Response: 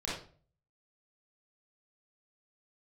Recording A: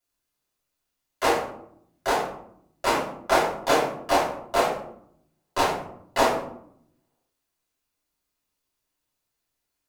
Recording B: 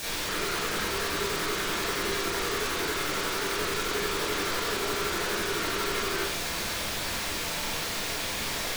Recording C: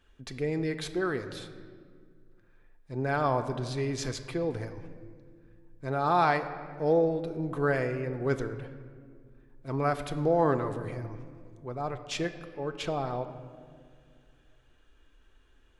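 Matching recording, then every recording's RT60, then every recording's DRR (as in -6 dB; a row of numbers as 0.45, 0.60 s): B; 0.70, 0.45, 2.1 s; -8.5, -7.5, 6.5 dB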